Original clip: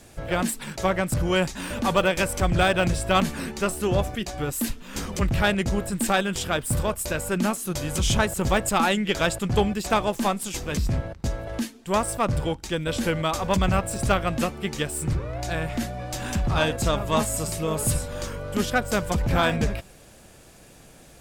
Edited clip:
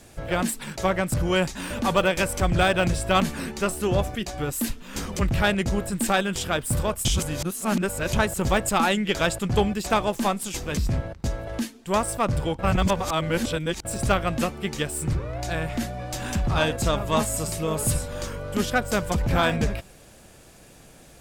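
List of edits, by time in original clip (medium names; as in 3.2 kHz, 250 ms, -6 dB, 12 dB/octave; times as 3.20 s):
7.05–8.13 s: reverse
12.59–13.85 s: reverse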